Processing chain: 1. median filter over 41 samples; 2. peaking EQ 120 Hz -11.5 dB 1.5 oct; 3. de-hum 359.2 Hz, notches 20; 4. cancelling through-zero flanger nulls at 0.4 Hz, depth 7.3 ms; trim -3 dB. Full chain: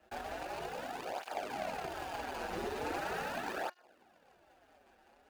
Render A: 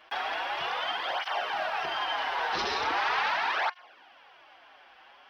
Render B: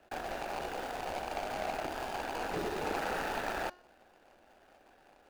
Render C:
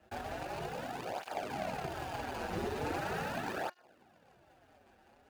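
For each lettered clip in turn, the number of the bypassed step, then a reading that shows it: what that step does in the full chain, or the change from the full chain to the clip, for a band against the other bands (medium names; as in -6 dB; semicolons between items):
1, 250 Hz band -13.5 dB; 4, loudness change +3.0 LU; 2, 125 Hz band +8.5 dB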